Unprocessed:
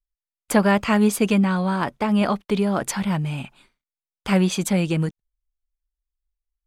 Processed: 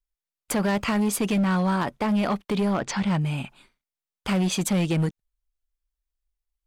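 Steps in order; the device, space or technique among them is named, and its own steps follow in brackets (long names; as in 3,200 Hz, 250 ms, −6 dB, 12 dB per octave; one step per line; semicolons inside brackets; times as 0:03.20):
0:02.73–0:03.19: low-pass filter 4,700 Hz → 10,000 Hz 24 dB per octave
limiter into clipper (brickwall limiter −14 dBFS, peak gain reduction 7.5 dB; hard clipping −19 dBFS, distortion −15 dB)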